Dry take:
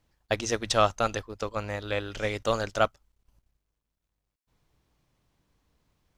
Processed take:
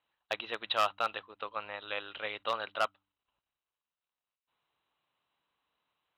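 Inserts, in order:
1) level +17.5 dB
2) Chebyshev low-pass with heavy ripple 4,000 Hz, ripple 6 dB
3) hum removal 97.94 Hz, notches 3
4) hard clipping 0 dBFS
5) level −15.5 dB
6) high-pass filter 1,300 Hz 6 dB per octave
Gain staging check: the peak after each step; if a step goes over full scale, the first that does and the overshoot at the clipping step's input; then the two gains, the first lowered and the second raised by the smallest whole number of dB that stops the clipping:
+9.0, +7.0, +7.0, 0.0, −15.5, −13.0 dBFS
step 1, 7.0 dB
step 1 +10.5 dB, step 5 −8.5 dB

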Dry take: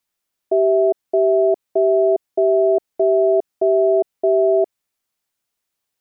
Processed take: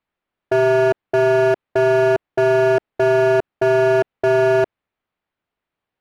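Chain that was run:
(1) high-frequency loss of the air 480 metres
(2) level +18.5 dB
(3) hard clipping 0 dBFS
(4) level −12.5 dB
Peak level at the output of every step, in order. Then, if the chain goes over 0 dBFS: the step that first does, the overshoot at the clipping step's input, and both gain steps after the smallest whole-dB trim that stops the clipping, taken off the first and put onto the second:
−10.0, +8.5, 0.0, −12.5 dBFS
step 2, 8.5 dB
step 2 +9.5 dB, step 4 −3.5 dB

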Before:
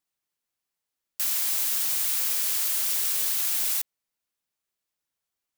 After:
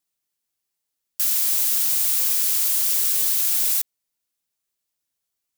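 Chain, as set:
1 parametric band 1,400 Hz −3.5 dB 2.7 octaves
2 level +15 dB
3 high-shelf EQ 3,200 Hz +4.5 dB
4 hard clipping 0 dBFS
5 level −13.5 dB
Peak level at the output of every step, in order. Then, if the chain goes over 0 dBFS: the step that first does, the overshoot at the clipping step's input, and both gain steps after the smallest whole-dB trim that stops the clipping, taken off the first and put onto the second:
−12.5, +2.5, +6.5, 0.0, −13.5 dBFS
step 2, 6.5 dB
step 2 +8 dB, step 5 −6.5 dB

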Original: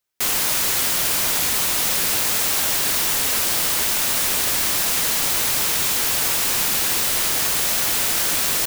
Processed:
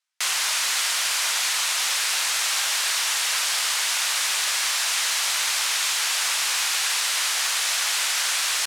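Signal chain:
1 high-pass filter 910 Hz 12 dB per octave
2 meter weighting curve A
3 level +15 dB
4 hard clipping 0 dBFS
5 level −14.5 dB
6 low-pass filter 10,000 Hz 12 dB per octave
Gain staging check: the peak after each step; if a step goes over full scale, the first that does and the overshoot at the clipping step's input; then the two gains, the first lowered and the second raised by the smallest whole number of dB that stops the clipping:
−6.5, −9.5, +5.5, 0.0, −14.5, −13.5 dBFS
step 3, 5.5 dB
step 3 +9 dB, step 5 −8.5 dB

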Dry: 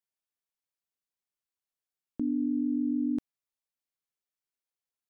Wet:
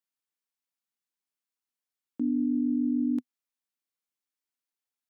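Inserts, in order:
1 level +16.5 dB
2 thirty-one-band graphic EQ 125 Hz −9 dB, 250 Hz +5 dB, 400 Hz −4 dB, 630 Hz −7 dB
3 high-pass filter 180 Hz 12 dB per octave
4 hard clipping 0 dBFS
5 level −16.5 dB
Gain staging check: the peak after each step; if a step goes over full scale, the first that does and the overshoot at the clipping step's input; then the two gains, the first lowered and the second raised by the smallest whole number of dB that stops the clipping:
−6.0, −3.0, −4.0, −4.0, −20.5 dBFS
no step passes full scale

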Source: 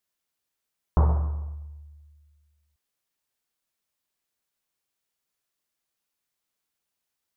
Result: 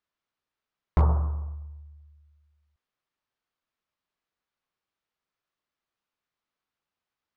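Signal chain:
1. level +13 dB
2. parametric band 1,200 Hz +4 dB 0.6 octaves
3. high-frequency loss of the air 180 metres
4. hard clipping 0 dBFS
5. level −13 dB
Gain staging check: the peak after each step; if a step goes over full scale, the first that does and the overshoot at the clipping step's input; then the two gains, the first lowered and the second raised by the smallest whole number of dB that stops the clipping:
+3.5, +4.0, +3.5, 0.0, −13.0 dBFS
step 1, 3.5 dB
step 1 +9 dB, step 5 −9 dB

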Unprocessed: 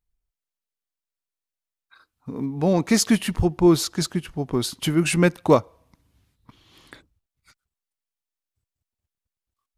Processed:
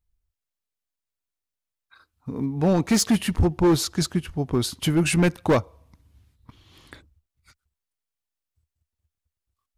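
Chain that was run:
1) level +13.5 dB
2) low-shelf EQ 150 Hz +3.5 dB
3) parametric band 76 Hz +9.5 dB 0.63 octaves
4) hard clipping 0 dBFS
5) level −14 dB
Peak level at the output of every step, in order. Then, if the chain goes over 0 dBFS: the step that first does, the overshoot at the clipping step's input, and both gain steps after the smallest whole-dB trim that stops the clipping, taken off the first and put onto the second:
+10.0, +10.0, +9.5, 0.0, −14.0 dBFS
step 1, 9.5 dB
step 1 +3.5 dB, step 5 −4 dB

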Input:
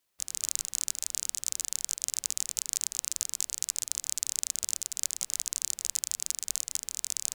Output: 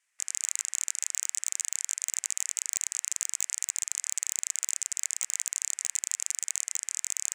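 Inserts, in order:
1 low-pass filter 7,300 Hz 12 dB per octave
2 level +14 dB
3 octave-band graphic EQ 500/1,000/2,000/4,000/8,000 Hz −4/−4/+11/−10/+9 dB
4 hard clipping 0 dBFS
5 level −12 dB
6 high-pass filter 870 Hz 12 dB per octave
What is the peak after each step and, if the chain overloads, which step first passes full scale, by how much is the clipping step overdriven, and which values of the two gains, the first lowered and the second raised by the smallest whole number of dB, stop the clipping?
−7.5, +6.5, +9.5, 0.0, −12.0, −10.5 dBFS
step 2, 9.5 dB
step 2 +4 dB, step 5 −2 dB

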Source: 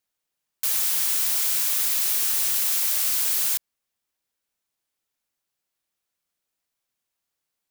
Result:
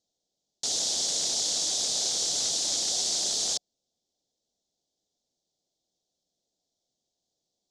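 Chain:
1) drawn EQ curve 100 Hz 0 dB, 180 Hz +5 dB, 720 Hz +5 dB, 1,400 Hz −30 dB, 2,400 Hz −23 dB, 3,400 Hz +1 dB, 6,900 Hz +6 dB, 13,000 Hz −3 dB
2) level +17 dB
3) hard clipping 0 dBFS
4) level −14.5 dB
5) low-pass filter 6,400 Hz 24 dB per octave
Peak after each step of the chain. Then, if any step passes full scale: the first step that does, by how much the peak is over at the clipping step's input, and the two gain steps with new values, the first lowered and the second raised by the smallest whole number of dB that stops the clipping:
−11.0, +6.0, 0.0, −14.5, −15.5 dBFS
step 2, 6.0 dB
step 2 +11 dB, step 4 −8.5 dB

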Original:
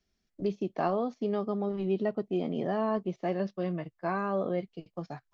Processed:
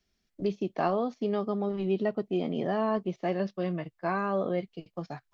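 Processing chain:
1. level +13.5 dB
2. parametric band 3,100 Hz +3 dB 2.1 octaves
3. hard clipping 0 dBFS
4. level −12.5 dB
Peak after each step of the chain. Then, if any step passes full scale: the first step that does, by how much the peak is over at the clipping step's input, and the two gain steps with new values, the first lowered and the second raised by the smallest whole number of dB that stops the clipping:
−2.0, −1.5, −1.5, −14.0 dBFS
no step passes full scale

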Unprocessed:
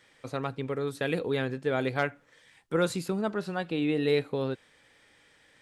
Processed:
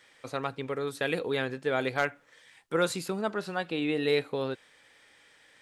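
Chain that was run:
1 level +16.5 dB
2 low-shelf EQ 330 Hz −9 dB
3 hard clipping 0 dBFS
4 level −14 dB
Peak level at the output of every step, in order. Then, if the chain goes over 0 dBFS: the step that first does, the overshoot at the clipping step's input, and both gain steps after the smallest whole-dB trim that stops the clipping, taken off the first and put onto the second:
+4.5, +3.5, 0.0, −14.0 dBFS
step 1, 3.5 dB
step 1 +12.5 dB, step 4 −10 dB

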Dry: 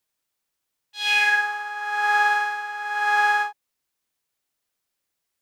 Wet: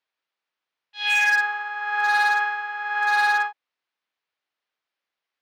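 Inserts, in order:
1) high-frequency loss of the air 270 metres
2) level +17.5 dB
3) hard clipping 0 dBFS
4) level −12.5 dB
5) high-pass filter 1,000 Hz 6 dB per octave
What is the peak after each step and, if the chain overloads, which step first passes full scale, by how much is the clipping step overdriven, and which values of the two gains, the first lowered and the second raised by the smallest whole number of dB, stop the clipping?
−11.5, +6.0, 0.0, −12.5, −10.5 dBFS
step 2, 6.0 dB
step 2 +11.5 dB, step 4 −6.5 dB

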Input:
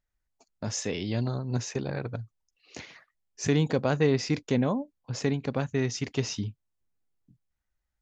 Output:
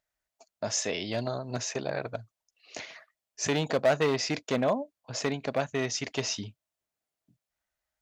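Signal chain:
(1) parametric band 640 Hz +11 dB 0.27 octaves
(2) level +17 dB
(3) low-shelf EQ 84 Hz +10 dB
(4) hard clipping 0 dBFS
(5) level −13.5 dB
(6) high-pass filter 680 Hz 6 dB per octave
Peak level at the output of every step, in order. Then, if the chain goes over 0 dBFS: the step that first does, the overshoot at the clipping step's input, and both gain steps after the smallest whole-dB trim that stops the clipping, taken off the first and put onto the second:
−8.5, +8.5, +8.0, 0.0, −13.5, −11.5 dBFS
step 2, 8.0 dB
step 2 +9 dB, step 5 −5.5 dB

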